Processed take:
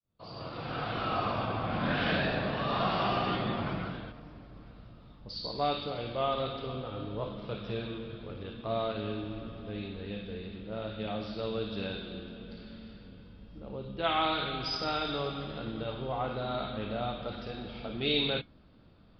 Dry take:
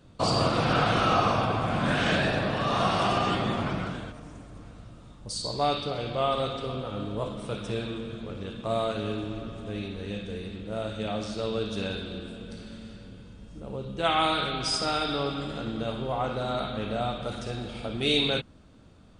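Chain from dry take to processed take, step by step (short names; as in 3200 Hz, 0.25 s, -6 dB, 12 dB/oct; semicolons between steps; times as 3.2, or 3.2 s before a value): opening faded in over 1.84 s; downsampling 11025 Hz; flange 0.13 Hz, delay 1.6 ms, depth 4.5 ms, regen -81%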